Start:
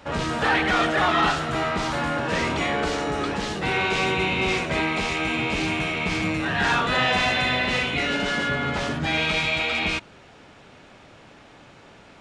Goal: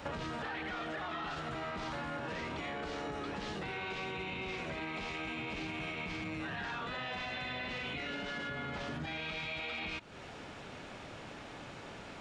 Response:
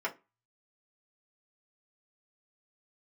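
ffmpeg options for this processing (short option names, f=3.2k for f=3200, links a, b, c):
-filter_complex "[0:a]acrossover=split=5700[a][b];[b]acompressor=threshold=-54dB:ratio=4:attack=1:release=60[c];[a][c]amix=inputs=2:normalize=0,alimiter=limit=-20.5dB:level=0:latency=1,acompressor=threshold=-39dB:ratio=6,volume=1dB"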